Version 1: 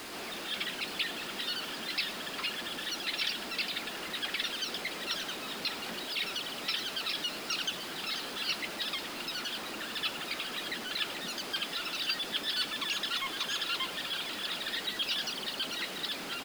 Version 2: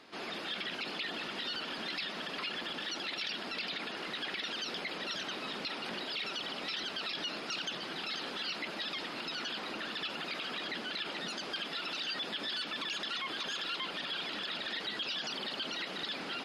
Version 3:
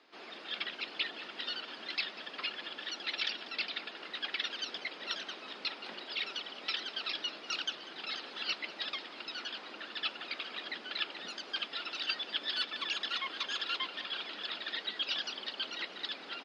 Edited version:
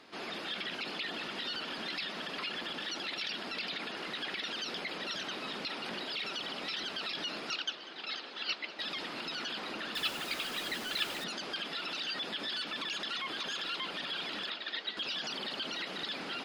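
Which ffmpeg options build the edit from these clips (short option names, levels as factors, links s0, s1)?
-filter_complex "[2:a]asplit=2[s0][s1];[1:a]asplit=4[s2][s3][s4][s5];[s2]atrim=end=7.512[s6];[s0]atrim=start=7.508:end=8.792[s7];[s3]atrim=start=8.788:end=9.952[s8];[0:a]atrim=start=9.948:end=11.242[s9];[s4]atrim=start=11.238:end=14.502[s10];[s1]atrim=start=14.498:end=14.972[s11];[s5]atrim=start=14.968[s12];[s6][s7]acrossfade=d=0.004:c1=hsin:c2=hsin[s13];[s13][s8]acrossfade=d=0.004:c1=hsin:c2=hsin[s14];[s14][s9]acrossfade=d=0.004:c1=hsin:c2=hsin[s15];[s15][s10]acrossfade=d=0.004:c1=hsin:c2=hsin[s16];[s16][s11]acrossfade=d=0.004:c1=hsin:c2=hsin[s17];[s17][s12]acrossfade=d=0.004:c1=hsin:c2=hsin"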